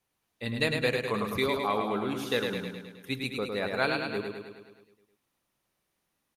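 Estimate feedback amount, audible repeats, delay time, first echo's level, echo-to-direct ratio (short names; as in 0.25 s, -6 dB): 60%, 7, 0.105 s, -4.5 dB, -2.5 dB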